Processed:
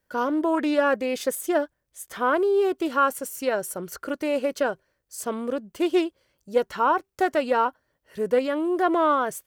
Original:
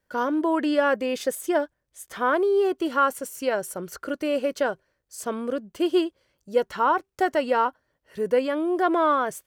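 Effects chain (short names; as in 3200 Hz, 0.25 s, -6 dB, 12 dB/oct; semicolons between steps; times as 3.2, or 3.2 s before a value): high shelf 11000 Hz +6.5 dB; Doppler distortion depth 0.11 ms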